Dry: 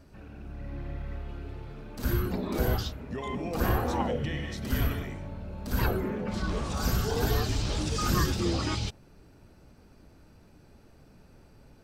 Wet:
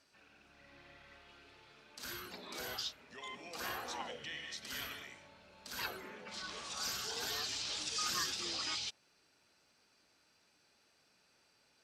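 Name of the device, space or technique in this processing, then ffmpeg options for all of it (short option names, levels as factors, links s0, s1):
piezo pickup straight into a mixer: -af "lowpass=5000,aderivative,volume=2"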